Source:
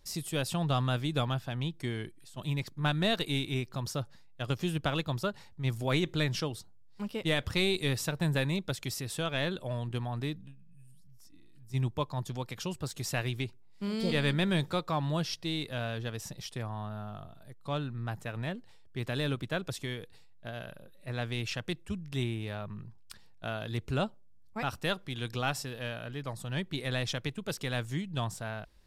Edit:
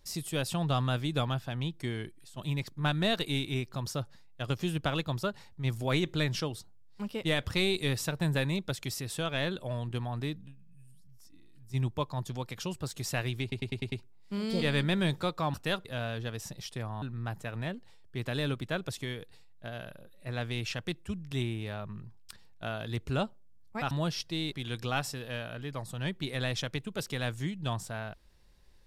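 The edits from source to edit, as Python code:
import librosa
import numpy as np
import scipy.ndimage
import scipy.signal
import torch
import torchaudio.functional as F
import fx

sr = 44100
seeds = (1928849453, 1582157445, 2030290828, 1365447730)

y = fx.edit(x, sr, fx.stutter(start_s=13.42, slice_s=0.1, count=6),
    fx.swap(start_s=15.04, length_s=0.61, other_s=24.72, other_length_s=0.31),
    fx.cut(start_s=16.82, length_s=1.01), tone=tone)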